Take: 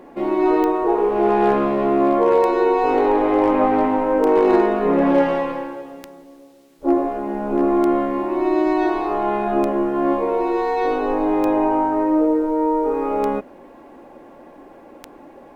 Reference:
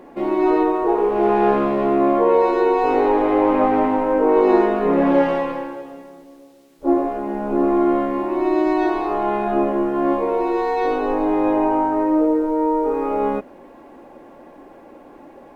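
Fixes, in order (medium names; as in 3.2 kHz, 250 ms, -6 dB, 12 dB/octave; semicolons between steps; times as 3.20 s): clip repair -8 dBFS; de-click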